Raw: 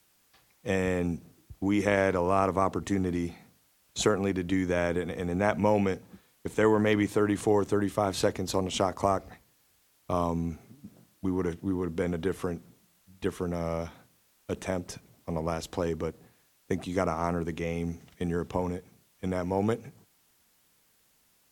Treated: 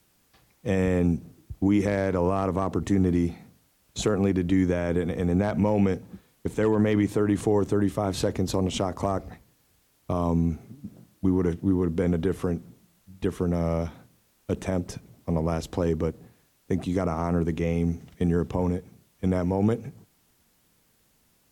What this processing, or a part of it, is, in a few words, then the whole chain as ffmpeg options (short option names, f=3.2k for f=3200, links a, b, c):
clipper into limiter: -af "asoftclip=type=hard:threshold=-14dB,alimiter=limit=-19dB:level=0:latency=1:release=62,lowshelf=f=470:g=9"